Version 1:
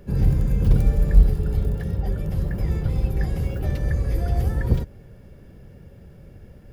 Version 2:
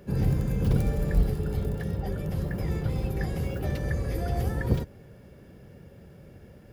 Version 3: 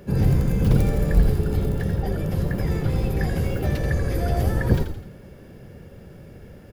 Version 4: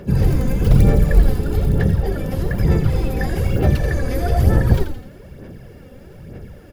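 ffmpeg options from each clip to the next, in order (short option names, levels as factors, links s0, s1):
-af "highpass=f=140:p=1"
-filter_complex "[0:a]asplit=6[s0][s1][s2][s3][s4][s5];[s1]adelay=84,afreqshift=-69,volume=0.398[s6];[s2]adelay=168,afreqshift=-138,volume=0.184[s7];[s3]adelay=252,afreqshift=-207,volume=0.0841[s8];[s4]adelay=336,afreqshift=-276,volume=0.0389[s9];[s5]adelay=420,afreqshift=-345,volume=0.0178[s10];[s0][s6][s7][s8][s9][s10]amix=inputs=6:normalize=0,volume=1.88"
-af "aphaser=in_gain=1:out_gain=1:delay=4:decay=0.5:speed=1.1:type=sinusoidal,volume=1.33"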